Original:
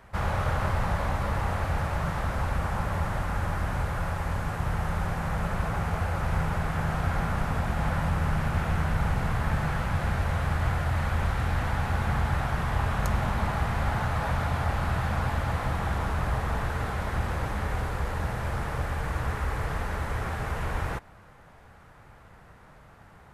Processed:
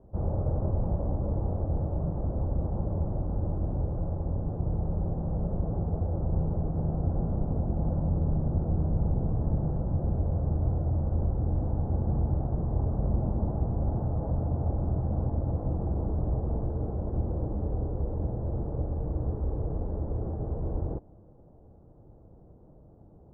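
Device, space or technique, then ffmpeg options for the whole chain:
under water: -af "lowpass=f=600:w=0.5412,lowpass=f=600:w=1.3066,equalizer=f=320:t=o:w=0.47:g=6.5"

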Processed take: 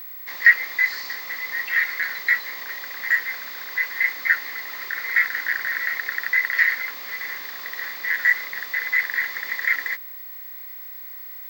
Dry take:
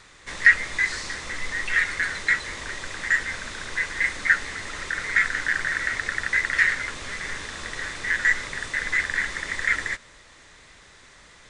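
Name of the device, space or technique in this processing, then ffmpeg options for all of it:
old television with a line whistle: -af "highpass=f=190:w=0.5412,highpass=f=190:w=1.3066,equalizer=f=220:t=q:w=4:g=-6,equalizer=f=350:t=q:w=4:g=-3,equalizer=f=770:t=q:w=4:g=6,equalizer=f=1100:t=q:w=4:g=5,equalizer=f=2000:t=q:w=4:g=10,equalizer=f=4600:t=q:w=4:g=10,lowpass=f=6600:w=0.5412,lowpass=f=6600:w=1.3066,aeval=exprs='val(0)+0.0398*sin(2*PI*15734*n/s)':c=same,volume=0.473"

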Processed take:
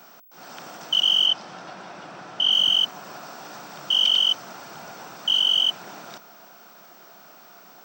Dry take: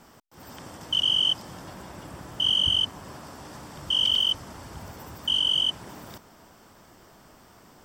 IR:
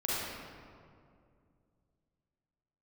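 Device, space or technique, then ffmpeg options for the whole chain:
old television with a line whistle: -filter_complex "[0:a]highpass=f=170:w=0.5412,highpass=f=170:w=1.3066,equalizer=f=260:t=q:w=4:g=-5,equalizer=f=720:t=q:w=4:g=8,equalizer=f=1400:t=q:w=4:g=9,equalizer=f=2500:t=q:w=4:g=7,equalizer=f=4000:t=q:w=4:g=7,equalizer=f=5900:t=q:w=4:g=6,lowpass=f=8300:w=0.5412,lowpass=f=8300:w=1.3066,aeval=exprs='val(0)+0.00316*sin(2*PI*15734*n/s)':c=same,asettb=1/sr,asplit=3[s0][s1][s2];[s0]atrim=end=1.264[s3];[s1]atrim=start=1.26:end=2.52,asetpts=PTS-STARTPTS,afade=t=in:d=0.004:c=qsin,afade=t=out:st=1.256:d=0.004:c=qsin,lowpass=5200[s4];[s2]atrim=start=2.516[s5];[s3][s4]acrossfade=d=0.004:c1=hsin:c2=qsin[s6];[s6][s5]acrossfade=d=0.004:c1=qsin:c2=hsin"

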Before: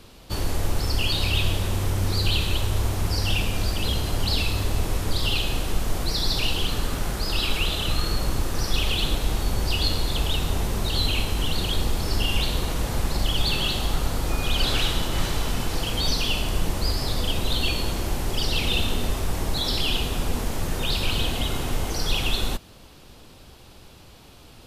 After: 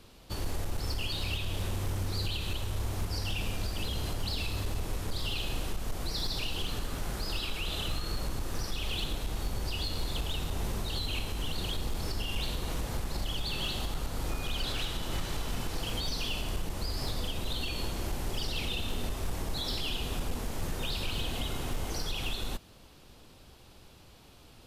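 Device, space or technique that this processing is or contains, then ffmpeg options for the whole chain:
limiter into clipper: -af "alimiter=limit=0.168:level=0:latency=1:release=175,asoftclip=type=hard:threshold=0.119,volume=0.447"

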